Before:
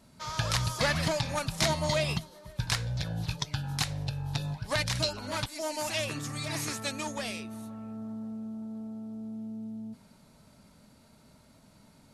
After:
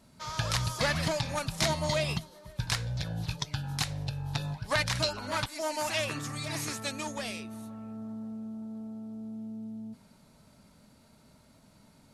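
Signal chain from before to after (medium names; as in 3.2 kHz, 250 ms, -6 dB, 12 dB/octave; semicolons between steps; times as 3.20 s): 4.21–6.35 s: dynamic bell 1.3 kHz, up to +5 dB, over -46 dBFS, Q 0.73; trim -1 dB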